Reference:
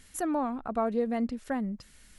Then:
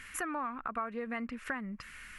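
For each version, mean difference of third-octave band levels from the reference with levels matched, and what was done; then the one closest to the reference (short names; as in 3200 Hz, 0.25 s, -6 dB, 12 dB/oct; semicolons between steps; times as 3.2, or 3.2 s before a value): 6.0 dB: band shelf 1700 Hz +15.5 dB; compressor 4:1, threshold -36 dBFS, peak gain reduction 15.5 dB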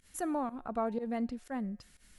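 1.5 dB: pump 122 bpm, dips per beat 1, -20 dB, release 0.102 s; resonator 180 Hz, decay 0.86 s, harmonics all, mix 40%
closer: second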